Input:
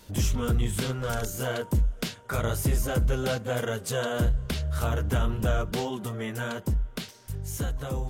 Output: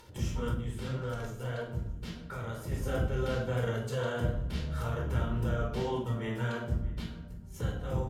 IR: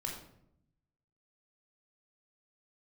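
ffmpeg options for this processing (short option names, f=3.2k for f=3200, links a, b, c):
-filter_complex "[0:a]alimiter=limit=-23dB:level=0:latency=1:release=33,highpass=f=53:p=1,bandreject=f=50:t=h:w=6,bandreject=f=100:t=h:w=6,bandreject=f=150:t=h:w=6,bandreject=f=200:t=h:w=6,bandreject=f=250:t=h:w=6,bandreject=f=300:t=h:w=6,bandreject=f=350:t=h:w=6,bandreject=f=400:t=h:w=6,bandreject=f=450:t=h:w=6,agate=range=-22dB:threshold=-34dB:ratio=16:detection=peak,aecho=1:1:622:0.0841[a];[1:a]atrim=start_sample=2205[b];[a][b]afir=irnorm=-1:irlink=0,asplit=3[c][d][e];[c]afade=t=out:st=0.53:d=0.02[f];[d]flanger=delay=3.8:depth=6.4:regen=73:speed=1.8:shape=sinusoidal,afade=t=in:st=0.53:d=0.02,afade=t=out:st=2.71:d=0.02[g];[e]afade=t=in:st=2.71:d=0.02[h];[f][g][h]amix=inputs=3:normalize=0,acompressor=mode=upward:threshold=-35dB:ratio=2.5,aemphasis=mode=reproduction:type=cd,volume=-2dB"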